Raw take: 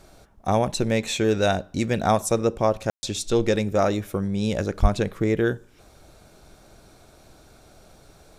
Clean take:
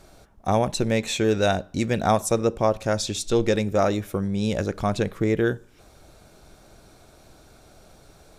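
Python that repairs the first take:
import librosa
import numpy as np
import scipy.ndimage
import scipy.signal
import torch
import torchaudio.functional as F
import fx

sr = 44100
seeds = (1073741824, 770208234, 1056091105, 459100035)

y = fx.highpass(x, sr, hz=140.0, slope=24, at=(4.81, 4.93), fade=0.02)
y = fx.fix_ambience(y, sr, seeds[0], print_start_s=5.63, print_end_s=6.13, start_s=2.9, end_s=3.03)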